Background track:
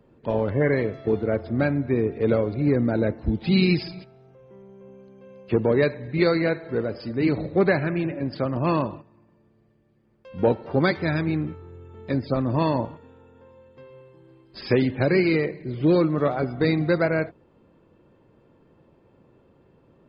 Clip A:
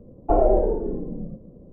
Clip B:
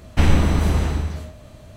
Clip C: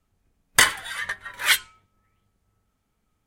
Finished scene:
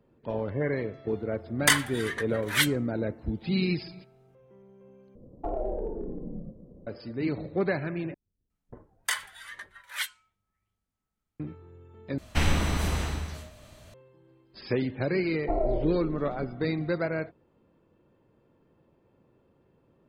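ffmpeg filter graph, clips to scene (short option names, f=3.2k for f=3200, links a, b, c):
-filter_complex "[3:a]asplit=2[a][b];[1:a]asplit=2[c][d];[0:a]volume=-7.5dB[e];[c]acompressor=threshold=-23dB:ratio=3:attack=0.26:release=236:knee=6:detection=rms[f];[b]acrossover=split=540[g][h];[h]adelay=360[i];[g][i]amix=inputs=2:normalize=0[j];[2:a]tiltshelf=f=930:g=-4.5[k];[d]aecho=1:1:3.1:0.38[l];[e]asplit=4[m][n][o][p];[m]atrim=end=5.154[q];[f]atrim=end=1.72,asetpts=PTS-STARTPTS,volume=-4.5dB[r];[n]atrim=start=6.866:end=8.144[s];[j]atrim=end=3.26,asetpts=PTS-STARTPTS,volume=-13dB[t];[o]atrim=start=11.396:end=12.184[u];[k]atrim=end=1.76,asetpts=PTS-STARTPTS,volume=-5.5dB[v];[p]atrim=start=13.936[w];[a]atrim=end=3.26,asetpts=PTS-STARTPTS,volume=-5dB,afade=t=in:d=0.004:c=hsin,afade=t=out:st=3.256:d=0.004:c=hsin,adelay=1090[x];[l]atrim=end=1.72,asetpts=PTS-STARTPTS,volume=-11dB,afade=t=in:d=0.004:c=hsin,afade=t=out:st=1.716:d=0.004:c=hsin,adelay=15190[y];[q][r]acrossfade=d=0.004:c1=hsin:c2=hsin[z];[z][s]acrossfade=d=0.004:c1=hsin:c2=hsin[aa];[aa][t]acrossfade=d=0.004:c1=hsin:c2=hsin[ab];[ab][u]acrossfade=d=0.004:c1=hsin:c2=hsin[ac];[ac][v]acrossfade=d=0.004:c1=hsin:c2=hsin[ad];[ad][w]acrossfade=d=0.004:c1=hsin:c2=hsin[ae];[ae][x][y]amix=inputs=3:normalize=0"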